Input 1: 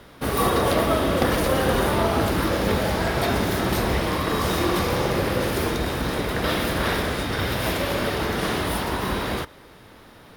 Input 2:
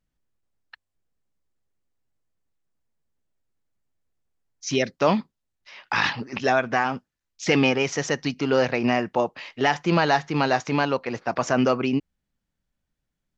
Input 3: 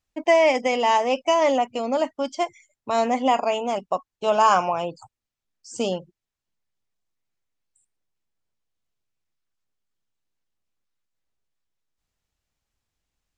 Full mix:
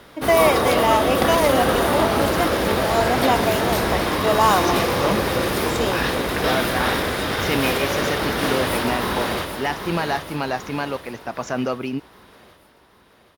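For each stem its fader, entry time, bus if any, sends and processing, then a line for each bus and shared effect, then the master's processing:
+2.5 dB, 0.00 s, no send, echo send -8 dB, bass shelf 190 Hz -6.5 dB
-3.5 dB, 0.00 s, no send, no echo send, none
0.0 dB, 0.00 s, no send, no echo send, steep high-pass 230 Hz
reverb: none
echo: feedback delay 779 ms, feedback 51%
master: none

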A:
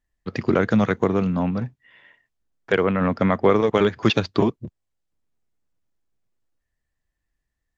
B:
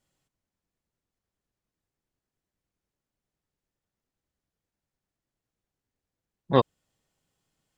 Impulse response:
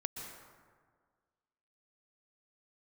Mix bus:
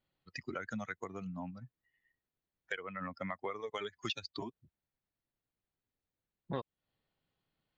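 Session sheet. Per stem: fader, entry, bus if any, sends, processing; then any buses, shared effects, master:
-7.0 dB, 0.00 s, no send, expander on every frequency bin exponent 2; tilt shelf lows -9 dB, about 1.1 kHz
-4.5 dB, 0.00 s, no send, elliptic low-pass 4.4 kHz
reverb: none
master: compression 4:1, threshold -37 dBFS, peak gain reduction 16 dB

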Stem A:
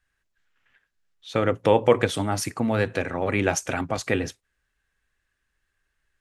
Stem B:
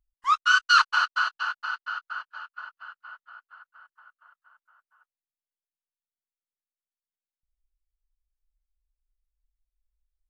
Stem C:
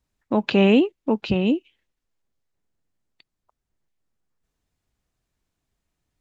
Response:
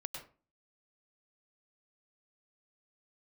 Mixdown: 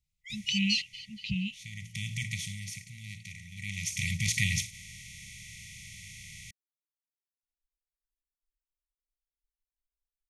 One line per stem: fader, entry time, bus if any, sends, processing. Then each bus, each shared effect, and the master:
-2.0 dB, 0.30 s, no send, spectral levelling over time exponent 0.4; auto duck -16 dB, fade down 1.05 s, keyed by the third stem
-1.0 dB, 0.00 s, no send, expander on every frequency bin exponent 2
-5.5 dB, 0.00 s, no send, none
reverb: none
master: brick-wall FIR band-stop 200–1900 Hz

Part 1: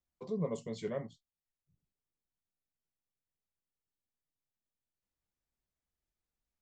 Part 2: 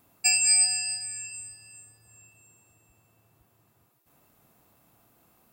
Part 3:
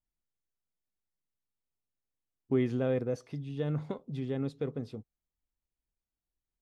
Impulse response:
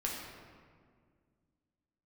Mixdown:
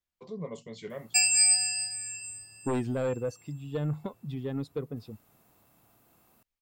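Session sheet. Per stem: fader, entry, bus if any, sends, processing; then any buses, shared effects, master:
-3.5 dB, 0.00 s, no send, peaking EQ 2.6 kHz +6.5 dB 2.2 oct
-1.0 dB, 0.90 s, no send, none
-6.5 dB, 0.15 s, no send, expander on every frequency bin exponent 1.5; sine folder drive 7 dB, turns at -18 dBFS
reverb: none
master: none

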